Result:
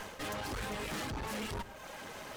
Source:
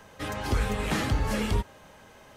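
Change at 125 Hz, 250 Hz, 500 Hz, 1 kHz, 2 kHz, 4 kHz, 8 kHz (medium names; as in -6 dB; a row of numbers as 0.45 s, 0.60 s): -14.5 dB, -11.0 dB, -8.0 dB, -6.5 dB, -6.5 dB, -5.5 dB, -5.0 dB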